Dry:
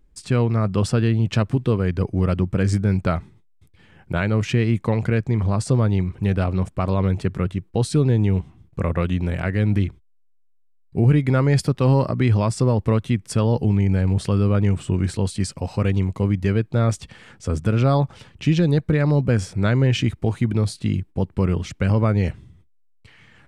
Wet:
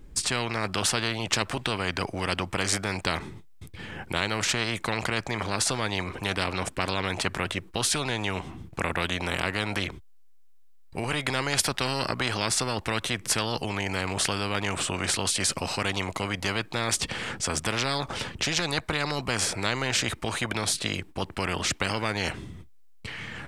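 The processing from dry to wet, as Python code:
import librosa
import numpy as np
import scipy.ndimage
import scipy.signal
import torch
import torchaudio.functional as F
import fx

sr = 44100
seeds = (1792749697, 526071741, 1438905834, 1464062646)

y = fx.spectral_comp(x, sr, ratio=4.0)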